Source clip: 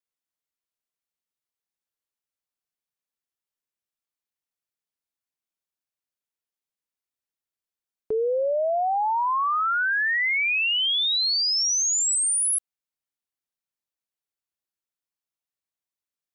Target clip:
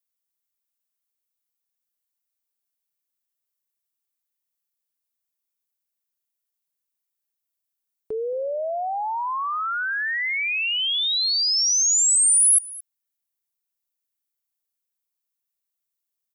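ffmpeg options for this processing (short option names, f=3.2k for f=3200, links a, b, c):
-af "aemphasis=mode=production:type=50kf,aecho=1:1:221:0.0944,volume=-3.5dB"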